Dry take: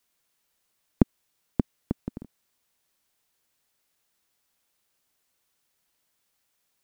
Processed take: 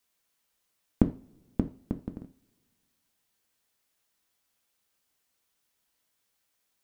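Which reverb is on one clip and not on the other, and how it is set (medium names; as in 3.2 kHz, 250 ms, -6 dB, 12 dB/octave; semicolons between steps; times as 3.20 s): two-slope reverb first 0.33 s, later 2 s, from -27 dB, DRR 6.5 dB; trim -3 dB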